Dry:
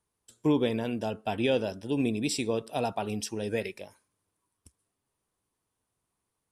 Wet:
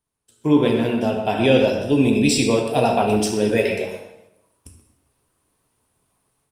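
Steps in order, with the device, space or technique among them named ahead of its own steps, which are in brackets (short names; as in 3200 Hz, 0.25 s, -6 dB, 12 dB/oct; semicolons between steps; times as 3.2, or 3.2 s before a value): speakerphone in a meeting room (reverb RT60 0.90 s, pre-delay 7 ms, DRR 1 dB; speakerphone echo 0.13 s, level -9 dB; AGC gain up to 14 dB; gain -1.5 dB; Opus 32 kbps 48000 Hz)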